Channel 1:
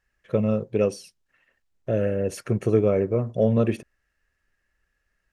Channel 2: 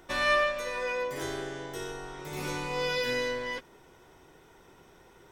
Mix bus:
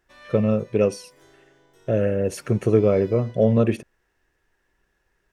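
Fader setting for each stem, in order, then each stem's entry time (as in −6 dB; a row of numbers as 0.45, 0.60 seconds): +2.5, −19.5 decibels; 0.00, 0.00 seconds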